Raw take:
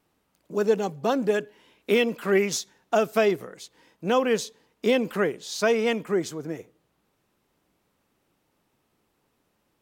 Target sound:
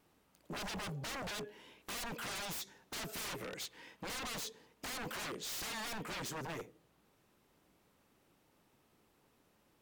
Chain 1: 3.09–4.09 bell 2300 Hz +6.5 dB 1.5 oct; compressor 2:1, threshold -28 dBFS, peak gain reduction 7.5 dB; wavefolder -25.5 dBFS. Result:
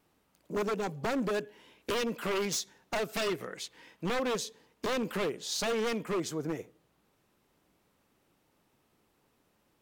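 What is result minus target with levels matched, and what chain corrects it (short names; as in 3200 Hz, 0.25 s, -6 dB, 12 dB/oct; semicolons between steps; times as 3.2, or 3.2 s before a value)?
wavefolder: distortion -25 dB
3.09–4.09 bell 2300 Hz +6.5 dB 1.5 oct; compressor 2:1, threshold -28 dBFS, peak gain reduction 7.5 dB; wavefolder -37 dBFS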